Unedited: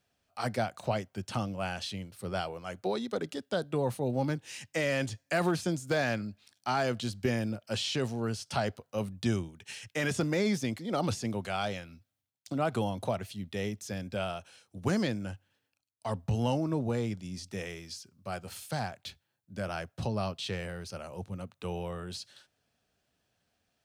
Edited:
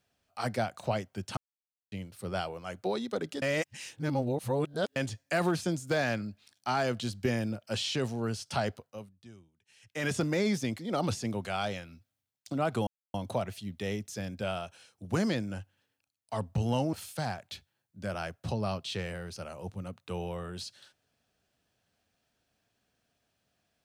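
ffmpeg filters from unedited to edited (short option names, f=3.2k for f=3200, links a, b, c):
-filter_complex "[0:a]asplit=9[a][b][c][d][e][f][g][h][i];[a]atrim=end=1.37,asetpts=PTS-STARTPTS,afade=t=out:st=1.366:d=0.004:c=hsin[j];[b]atrim=start=1.37:end=1.92,asetpts=PTS-STARTPTS,volume=0[k];[c]atrim=start=1.92:end=3.422,asetpts=PTS-STARTPTS,afade=t=in:d=0.004:c=hsin[l];[d]atrim=start=3.418:end=4.962,asetpts=PTS-STARTPTS,areverse[m];[e]atrim=start=4.958:end=9.19,asetpts=PTS-STARTPTS,afade=t=out:st=3.822:d=0.41:c=qua:silence=0.0749894[n];[f]atrim=start=9.19:end=9.66,asetpts=PTS-STARTPTS,volume=-22.5dB[o];[g]atrim=start=9.66:end=12.87,asetpts=PTS-STARTPTS,afade=t=in:d=0.41:c=qua:silence=0.0749894,afade=t=out:st=3.206:d=0.004:c=hsin,apad=pad_dur=0.27[p];[h]atrim=start=12.87:end=16.662,asetpts=PTS-STARTPTS,afade=t=in:d=0.004:c=hsin[q];[i]atrim=start=18.468[r];[j][k][l]concat=n=3:v=0:a=1[s];[s][m]acrossfade=d=0.004:c1=hsin:c2=hsin[t];[n][o][p][q]concat=n=4:v=0:a=1[u];[t][u]acrossfade=d=0.004:c1=hsin:c2=hsin[v];[v][r]acrossfade=d=0.004:c1=hsin:c2=hsin"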